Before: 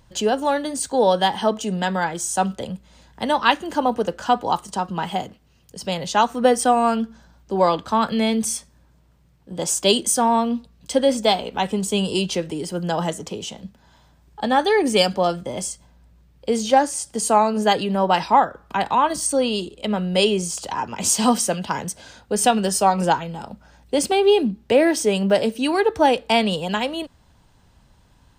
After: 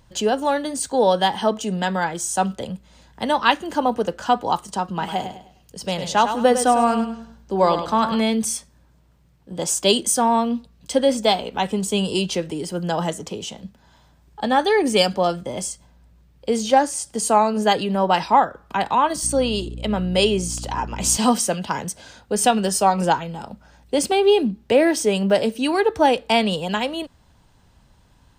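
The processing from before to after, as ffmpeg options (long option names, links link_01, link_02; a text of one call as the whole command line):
ffmpeg -i in.wav -filter_complex "[0:a]asettb=1/sr,asplit=3[link_01][link_02][link_03];[link_01]atrim=end=4.874[link_04];[link_02]atrim=start=4.87:end=8.21,asetpts=PTS-STARTPTS,afade=type=in:duration=0.004:curve=qsin,afade=type=out:start_time=3.336:duration=0.004:curve=qsin,aecho=1:1:102|204|306|408:0.355|0.117|0.0386|0.0128,atrim=end_sample=147294[link_05];[link_03]atrim=start=8.206[link_06];[link_04][link_05]acrossfade=duration=0.004:curve1=hsin:curve2=qsin[link_07];[link_07][link_06]acrossfade=duration=0.004:curve1=qsin:curve2=hsin,asettb=1/sr,asplit=3[link_08][link_09][link_10];[link_08]atrim=end=19.234[link_11];[link_09]atrim=start=19.23:end=21.17,asetpts=PTS-STARTPTS,afade=type=in:duration=0.004:curve=qsin,afade=type=out:start_time=1.936:duration=0.004:curve=qsin,aeval=exprs='val(0)+0.0282*(sin(2*PI*60*n/s)+sin(2*PI*2*60*n/s)/2+sin(2*PI*3*60*n/s)/3+sin(2*PI*4*60*n/s)/4+sin(2*PI*5*60*n/s)/5)':channel_layout=same[link_12];[link_10]atrim=start=21.166[link_13];[link_11][link_12]acrossfade=duration=0.004:curve1=hsin:curve2=qsin[link_14];[link_14][link_13]acrossfade=duration=0.004:curve1=qsin:curve2=hsin" out.wav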